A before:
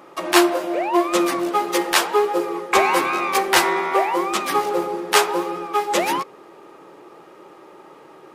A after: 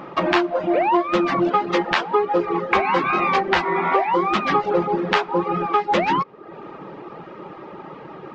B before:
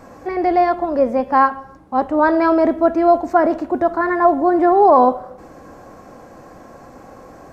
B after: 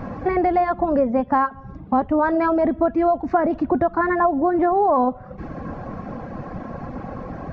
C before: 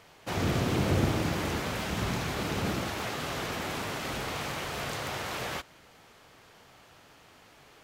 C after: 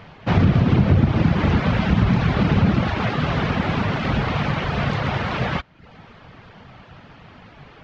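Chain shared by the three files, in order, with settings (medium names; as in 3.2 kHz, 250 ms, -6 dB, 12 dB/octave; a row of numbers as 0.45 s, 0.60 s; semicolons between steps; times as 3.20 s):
reverb removal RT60 0.6 s; resonant low shelf 260 Hz +6.5 dB, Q 1.5; compression 5:1, threshold -25 dBFS; Gaussian low-pass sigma 2.3 samples; normalise loudness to -20 LUFS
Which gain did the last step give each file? +9.5 dB, +8.5 dB, +13.0 dB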